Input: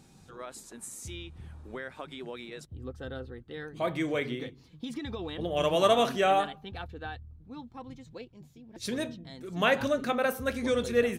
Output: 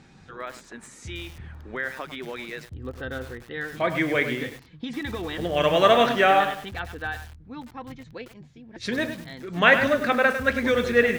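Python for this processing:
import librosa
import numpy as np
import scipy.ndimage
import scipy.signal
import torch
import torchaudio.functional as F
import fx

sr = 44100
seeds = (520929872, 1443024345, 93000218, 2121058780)

y = scipy.signal.sosfilt(scipy.signal.butter(2, 4900.0, 'lowpass', fs=sr, output='sos'), x)
y = fx.peak_eq(y, sr, hz=1800.0, db=9.0, octaves=0.85)
y = fx.echo_crushed(y, sr, ms=102, feedback_pct=35, bits=7, wet_db=-9.0)
y = y * 10.0 ** (4.5 / 20.0)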